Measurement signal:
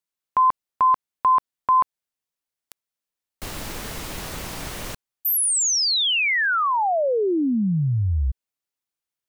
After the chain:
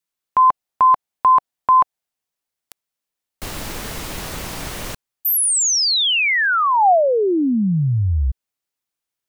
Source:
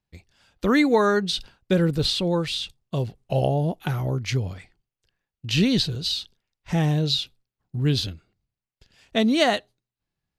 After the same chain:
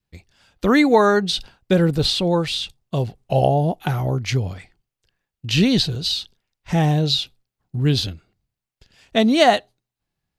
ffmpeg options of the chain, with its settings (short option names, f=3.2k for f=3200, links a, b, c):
-af "adynamicequalizer=threshold=0.0112:dfrequency=750:dqfactor=3:tfrequency=750:tqfactor=3:attack=5:release=100:ratio=0.375:range=3:mode=boostabove:tftype=bell,volume=3.5dB"